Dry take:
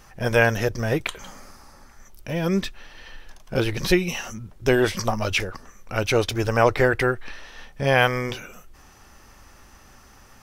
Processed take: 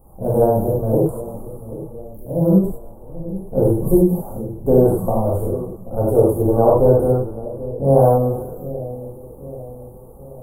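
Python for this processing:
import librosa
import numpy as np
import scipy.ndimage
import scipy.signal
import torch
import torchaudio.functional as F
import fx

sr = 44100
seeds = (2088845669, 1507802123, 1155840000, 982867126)

y = scipy.signal.sosfilt(scipy.signal.cheby2(4, 50, [1700.0, 5800.0], 'bandstop', fs=sr, output='sos'), x)
y = fx.echo_split(y, sr, split_hz=600.0, low_ms=783, high_ms=123, feedback_pct=52, wet_db=-14.0)
y = fx.rev_gated(y, sr, seeds[0], gate_ms=130, shape='flat', drr_db=-6.0)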